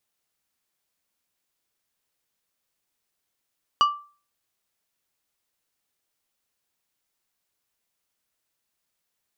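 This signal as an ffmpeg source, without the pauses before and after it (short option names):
-f lavfi -i "aevalsrc='0.251*pow(10,-3*t/0.38)*sin(2*PI*1170*t)+0.0944*pow(10,-3*t/0.2)*sin(2*PI*2925*t)+0.0355*pow(10,-3*t/0.144)*sin(2*PI*4680*t)+0.0133*pow(10,-3*t/0.123)*sin(2*PI*5850*t)+0.00501*pow(10,-3*t/0.103)*sin(2*PI*7605*t)':d=0.89:s=44100"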